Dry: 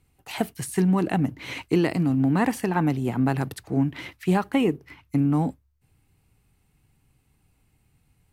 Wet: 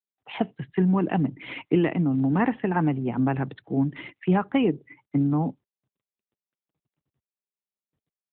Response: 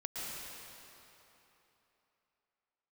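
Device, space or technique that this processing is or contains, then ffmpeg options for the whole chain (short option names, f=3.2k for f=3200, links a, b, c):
mobile call with aggressive noise cancelling: -af "highpass=f=120:w=0.5412,highpass=f=120:w=1.3066,afftdn=nr=36:nf=-45" -ar 8000 -c:a libopencore_amrnb -b:a 12200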